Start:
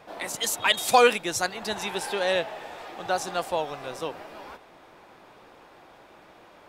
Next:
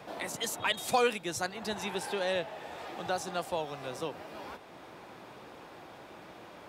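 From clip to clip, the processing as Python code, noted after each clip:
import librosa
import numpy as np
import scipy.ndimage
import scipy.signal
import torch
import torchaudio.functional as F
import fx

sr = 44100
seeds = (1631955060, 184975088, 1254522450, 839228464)

y = scipy.signal.sosfilt(scipy.signal.butter(2, 70.0, 'highpass', fs=sr, output='sos'), x)
y = fx.low_shelf(y, sr, hz=250.0, db=8.0)
y = fx.band_squash(y, sr, depth_pct=40)
y = y * librosa.db_to_amplitude(-7.0)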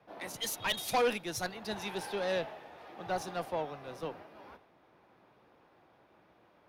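y = fx.tube_stage(x, sr, drive_db=28.0, bias=0.3)
y = fx.peak_eq(y, sr, hz=7700.0, db=-11.0, octaves=0.3)
y = fx.band_widen(y, sr, depth_pct=100)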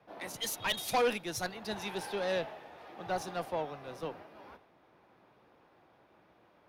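y = x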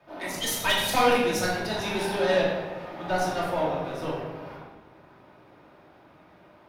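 y = fx.room_shoebox(x, sr, seeds[0], volume_m3=690.0, walls='mixed', distance_m=2.7)
y = y * librosa.db_to_amplitude(3.5)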